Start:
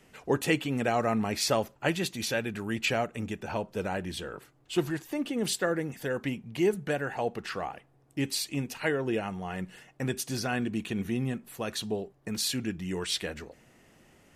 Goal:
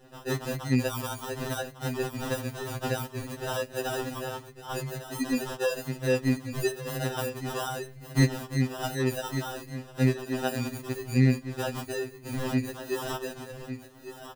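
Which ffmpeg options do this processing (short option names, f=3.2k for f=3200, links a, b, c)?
-filter_complex "[0:a]alimiter=limit=-23dB:level=0:latency=1:release=317,asettb=1/sr,asplit=3[a][b][c];[a]atrim=end=7.714[d];[b]atrim=start=7.71:end=8.32,asetpts=PTS-STARTPTS,afade=t=in:d=0.004:c=qsin,afade=t=out:st=0.606:d=0.004:c=qsin,acontrast=71[e];[c]atrim=start=8.316[f];[d][e]acrossfade=d=0.004:c1=hsin:c2=qsin[g];[g][f]acrossfade=d=0.004:c1=qsin:c2=hsin,aecho=1:1:1153:0.282,aresample=11025,aresample=44100,asettb=1/sr,asplit=3[h][i][j];[h]atrim=end=3.464[k];[i]atrim=start=3.46:end=4.09,asetpts=PTS-STARTPTS,afade=t=in:d=0.004:c=qsin,afade=t=out:st=0.626:d=0.004:c=qsin,highshelf=f=3k:g=9.5[l];[j]atrim=start=4.086[m];[k][l]acrossfade=d=0.004:c1=hsin:c2=qsin[n];[n][m]acrossfade=d=0.004:c1=qsin:c2=hsin,asettb=1/sr,asplit=3[o][p][q];[o]atrim=end=10.134[r];[p]atrim=start=10.13:end=10.56,asetpts=PTS-STARTPTS,afade=t=in:d=0.004:c=qsin,afade=t=out:st=0.426:d=0.004:c=qsin,highpass=280[s];[q]atrim=start=10.556[t];[r][s]acrossfade=d=0.004:c1=hsin:c2=qsin[u];[u][t]acrossfade=d=0.004:c1=qsin:c2=hsin,acrusher=samples=20:mix=1:aa=0.000001,afftfilt=real='re*2.45*eq(mod(b,6),0)':imag='im*2.45*eq(mod(b,6),0)':win_size=2048:overlap=0.75,volume=6.5dB"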